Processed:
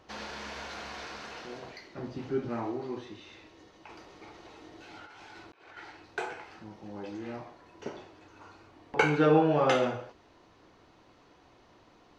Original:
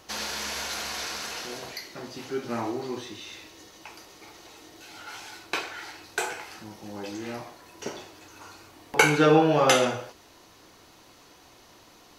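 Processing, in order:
0:01.97–0:02.49: low-shelf EQ 270 Hz +11 dB
0:03.89–0:05.77: compressor whose output falls as the input rises −45 dBFS, ratio −1
head-to-tape spacing loss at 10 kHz 24 dB
level −2.5 dB

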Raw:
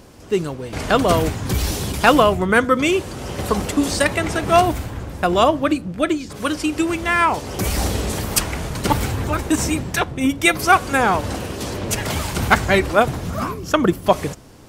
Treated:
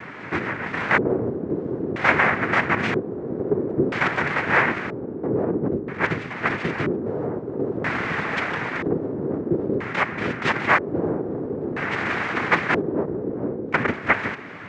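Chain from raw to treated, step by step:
compressor on every frequency bin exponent 0.6
cochlear-implant simulation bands 3
auto-filter low-pass square 0.51 Hz 420–2,200 Hz
level −10.5 dB

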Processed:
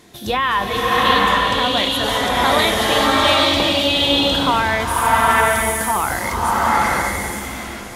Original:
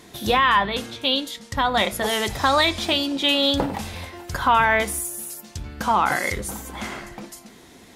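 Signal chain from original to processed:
slow-attack reverb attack 810 ms, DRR −6 dB
level −1 dB

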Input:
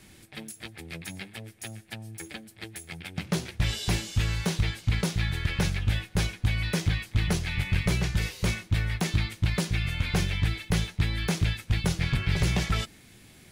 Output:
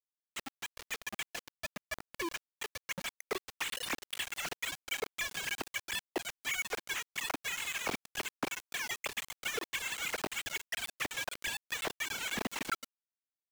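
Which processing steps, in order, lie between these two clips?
three sine waves on the formant tracks
downward compressor 8 to 1, threshold −30 dBFS, peak gain reduction 16 dB
centre clipping without the shift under −30 dBFS
level −2 dB

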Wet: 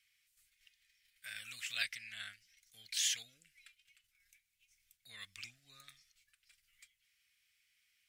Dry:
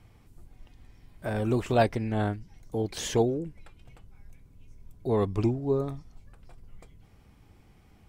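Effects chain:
noise gate −48 dBFS, range −6 dB
inverse Chebyshev high-pass filter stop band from 990 Hz, stop band 40 dB
level +2 dB

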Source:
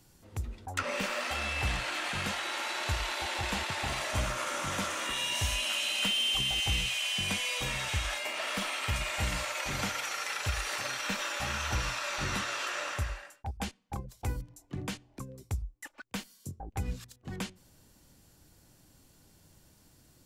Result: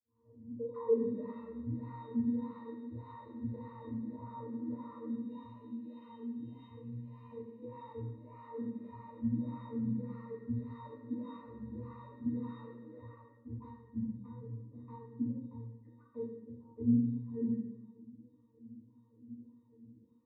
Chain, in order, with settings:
turntable start at the beginning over 1.00 s
brickwall limiter −28 dBFS, peak gain reduction 8.5 dB
resonances in every octave A#, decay 0.31 s
LFO wah 1.7 Hz 210–1,200 Hz, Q 6.1
convolution reverb RT60 1.0 s, pre-delay 3 ms, DRR −14.5 dB

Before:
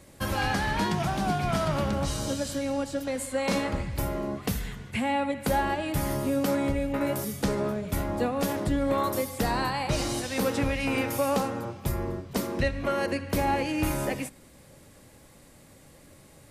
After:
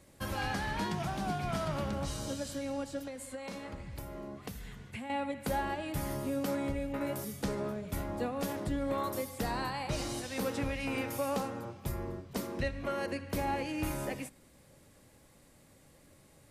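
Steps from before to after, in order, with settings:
0:03.06–0:05.10: downward compressor, threshold −32 dBFS, peak gain reduction 9.5 dB
level −7.5 dB

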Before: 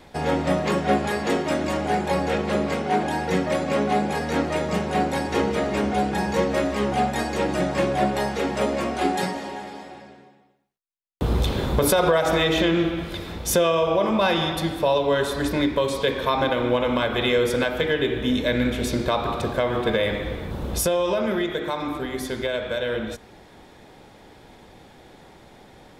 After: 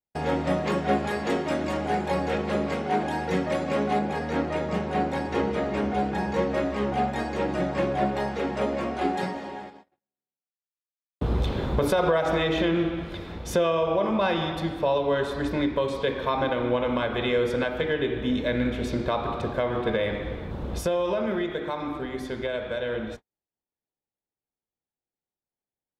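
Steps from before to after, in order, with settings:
noise gate −35 dBFS, range −47 dB
parametric band 13,000 Hz −6.5 dB 1.8 octaves, from 0:03.99 −14.5 dB
level −3 dB

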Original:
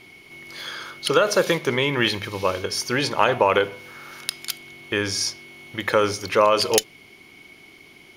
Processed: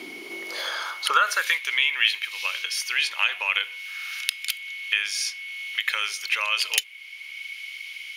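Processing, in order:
high-pass filter sweep 280 Hz → 2,500 Hz, 0:00.14–0:01.64
dynamic equaliser 5,200 Hz, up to −6 dB, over −36 dBFS, Q 1.5
multiband upward and downward compressor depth 40%

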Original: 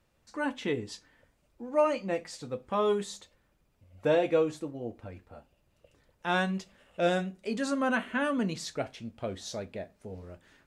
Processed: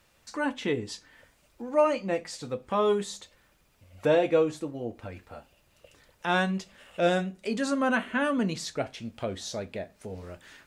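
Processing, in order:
one half of a high-frequency compander encoder only
level +2.5 dB

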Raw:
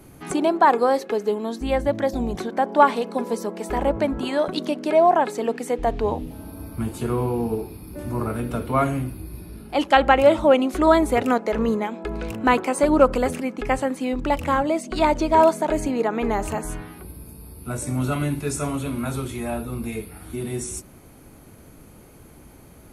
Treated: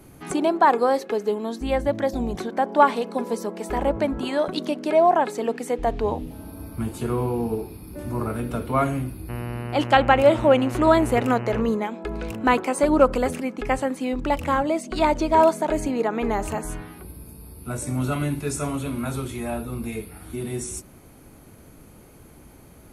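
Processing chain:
0:09.28–0:11.60: hum with harmonics 120 Hz, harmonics 25, −30 dBFS −6 dB per octave
level −1 dB

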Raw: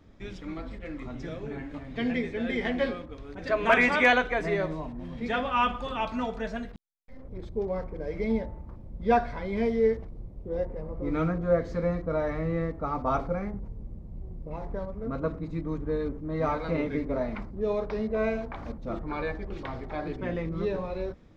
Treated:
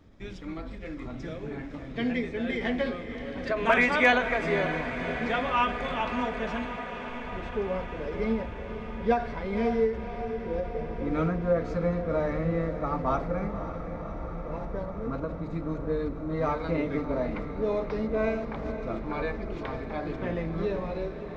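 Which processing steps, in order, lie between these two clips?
feedback delay with all-pass diffusion 550 ms, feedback 77%, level −11 dB
every ending faded ahead of time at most 120 dB per second

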